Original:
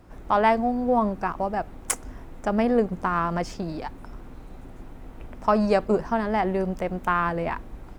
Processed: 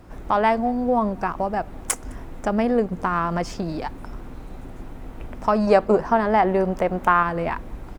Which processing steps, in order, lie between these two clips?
0:05.67–0:07.23: parametric band 840 Hz +6.5 dB 2.8 octaves
in parallel at +1 dB: downward compressor, threshold −29 dBFS, peak gain reduction 17.5 dB
on the sum: slap from a distant wall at 36 metres, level −28 dB
level −1.5 dB

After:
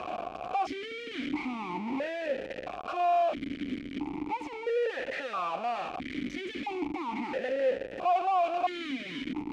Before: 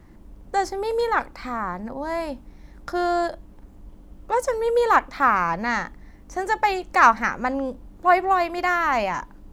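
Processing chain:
sign of each sample alone
high-frequency loss of the air 55 metres
formant filter that steps through the vowels 1.5 Hz
level +3 dB

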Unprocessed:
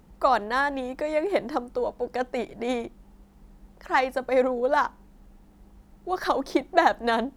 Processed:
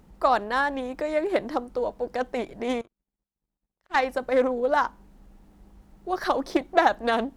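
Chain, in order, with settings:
0:02.81–0:03.96: power curve on the samples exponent 2
highs frequency-modulated by the lows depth 0.24 ms

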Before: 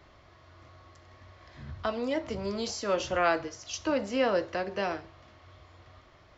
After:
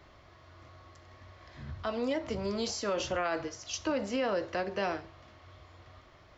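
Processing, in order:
brickwall limiter −23 dBFS, peak gain reduction 9 dB

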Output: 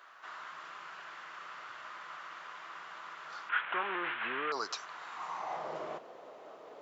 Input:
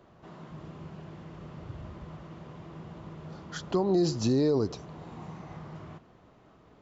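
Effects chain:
0:03.49–0:04.52: linear delta modulator 16 kbit/s, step −39.5 dBFS
high-pass filter sweep 1,400 Hz → 530 Hz, 0:05.13–0:05.74
level +6 dB

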